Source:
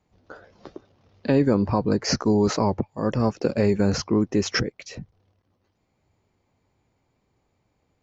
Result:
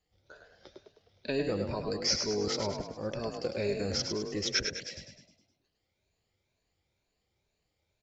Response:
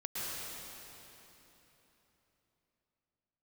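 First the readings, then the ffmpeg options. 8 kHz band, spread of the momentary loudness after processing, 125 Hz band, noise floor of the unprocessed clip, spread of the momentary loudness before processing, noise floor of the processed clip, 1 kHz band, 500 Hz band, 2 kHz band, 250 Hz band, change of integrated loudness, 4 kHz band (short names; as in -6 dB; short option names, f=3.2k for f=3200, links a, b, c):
n/a, 9 LU, -14.5 dB, -72 dBFS, 11 LU, -81 dBFS, -12.5 dB, -9.0 dB, -6.5 dB, -15.0 dB, -9.5 dB, -0.5 dB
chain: -filter_complex "[0:a]afftfilt=real='re*pow(10,9/40*sin(2*PI*(1.5*log(max(b,1)*sr/1024/100)/log(2)-(2.1)*(pts-256)/sr)))':imag='im*pow(10,9/40*sin(2*PI*(1.5*log(max(b,1)*sr/1024/100)/log(2)-(2.1)*(pts-256)/sr)))':win_size=1024:overlap=0.75,equalizer=f=125:t=o:w=1:g=-8,equalizer=f=250:t=o:w=1:g=-10,equalizer=f=1k:t=o:w=1:g=-10,equalizer=f=4k:t=o:w=1:g=6,asplit=2[a][b];[b]asplit=6[c][d][e][f][g][h];[c]adelay=103,afreqshift=34,volume=-6dB[i];[d]adelay=206,afreqshift=68,volume=-12dB[j];[e]adelay=309,afreqshift=102,volume=-18dB[k];[f]adelay=412,afreqshift=136,volume=-24.1dB[l];[g]adelay=515,afreqshift=170,volume=-30.1dB[m];[h]adelay=618,afreqshift=204,volume=-36.1dB[n];[i][j][k][l][m][n]amix=inputs=6:normalize=0[o];[a][o]amix=inputs=2:normalize=0,volume=-7dB"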